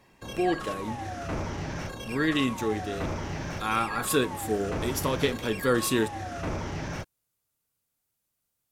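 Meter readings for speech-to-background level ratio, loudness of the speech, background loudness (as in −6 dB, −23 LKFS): 6.5 dB, −29.0 LKFS, −35.5 LKFS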